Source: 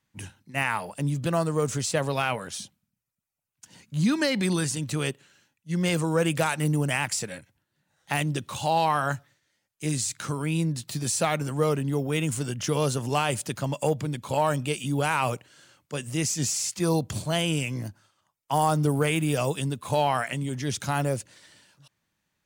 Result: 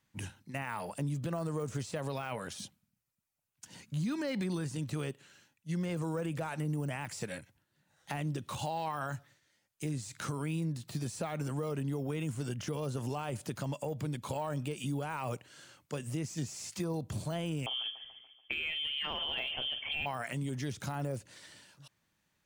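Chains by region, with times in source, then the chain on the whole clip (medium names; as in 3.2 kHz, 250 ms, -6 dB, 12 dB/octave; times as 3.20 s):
17.66–20.06 s: doubling 46 ms -12.5 dB + feedback delay 144 ms, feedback 53%, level -17 dB + frequency inversion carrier 3.3 kHz
whole clip: de-esser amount 90%; peak limiter -20 dBFS; compression 2:1, threshold -37 dBFS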